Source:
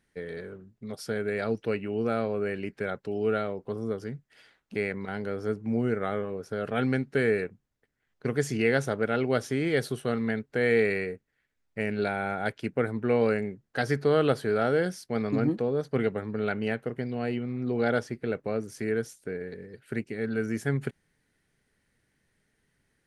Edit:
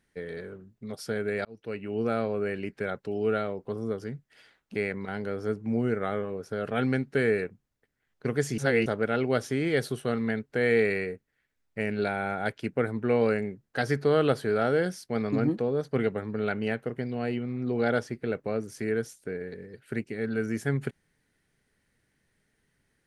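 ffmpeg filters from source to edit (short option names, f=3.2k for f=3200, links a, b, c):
-filter_complex "[0:a]asplit=4[a][b][c][d];[a]atrim=end=1.45,asetpts=PTS-STARTPTS,afade=t=out:st=1.446:d=0.004:c=hsin[e];[b]atrim=start=1.45:end=8.582,asetpts=PTS-STARTPTS,afade=t=in:d=0.55[f];[c]atrim=start=8.578:end=8.862,asetpts=PTS-STARTPTS,areverse[g];[d]atrim=start=8.858[h];[e][f]concat=n=2:v=0:a=1[i];[i][g]acrossfade=d=0.004:c1=hsin:c2=hsin[j];[j][h]acrossfade=d=0.004:c1=hsin:c2=hsin"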